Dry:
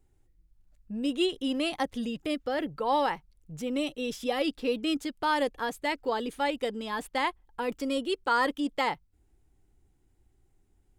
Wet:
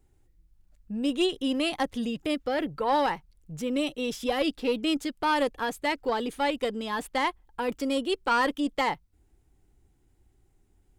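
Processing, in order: single-diode clipper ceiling -20 dBFS; trim +3 dB

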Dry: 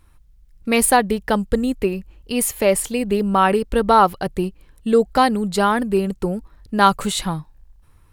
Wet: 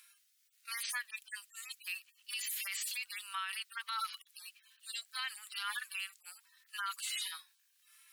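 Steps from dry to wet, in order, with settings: harmonic-percussive separation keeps harmonic; Bessel high-pass 2.6 kHz, order 8; peak limiter -40.5 dBFS, peak gain reduction 22.5 dB; trim +11 dB

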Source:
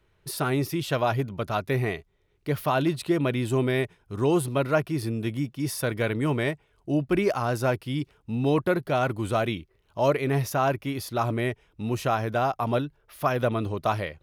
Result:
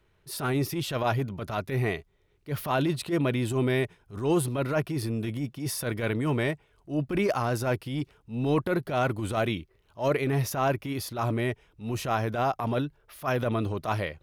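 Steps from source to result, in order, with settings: transient shaper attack -11 dB, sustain +1 dB

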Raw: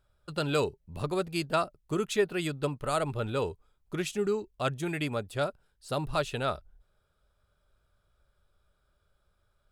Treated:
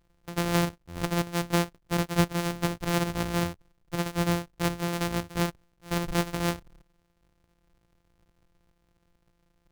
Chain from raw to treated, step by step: sorted samples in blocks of 256 samples; trim +2.5 dB

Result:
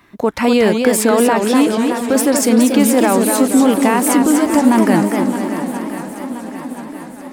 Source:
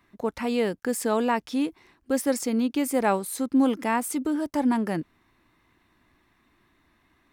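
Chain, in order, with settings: bass shelf 66 Hz -8 dB; on a send: shuffle delay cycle 1026 ms, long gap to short 1.5:1, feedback 50%, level -14 dB; on the sum: loudness maximiser +18 dB; modulated delay 239 ms, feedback 50%, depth 199 cents, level -5 dB; trim -4 dB

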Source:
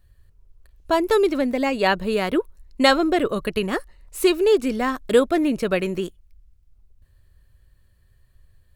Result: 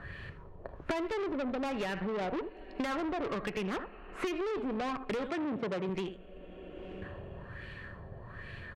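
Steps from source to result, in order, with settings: LFO low-pass sine 1.2 Hz 710–2600 Hz; two-slope reverb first 0.29 s, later 2.7 s, from -18 dB, DRR 17 dB; peak limiter -12 dBFS, peak gain reduction 11 dB; delay 79 ms -16 dB; valve stage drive 26 dB, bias 0.45; 5.29–5.89 s: elliptic band-pass 100–9200 Hz; three bands compressed up and down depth 100%; trim -5.5 dB

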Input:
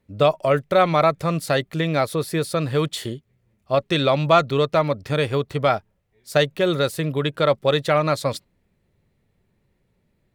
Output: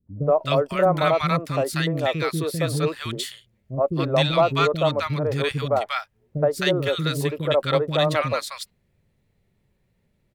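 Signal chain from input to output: three bands offset in time lows, mids, highs 70/260 ms, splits 320/1100 Hz

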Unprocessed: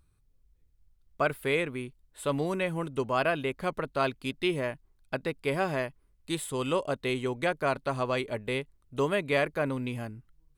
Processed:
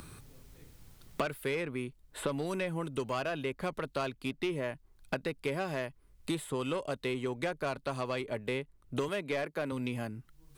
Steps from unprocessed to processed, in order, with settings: 9.08–9.72 s: high-pass 170 Hz; saturation -21.5 dBFS, distortion -16 dB; three bands compressed up and down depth 100%; trim -4 dB

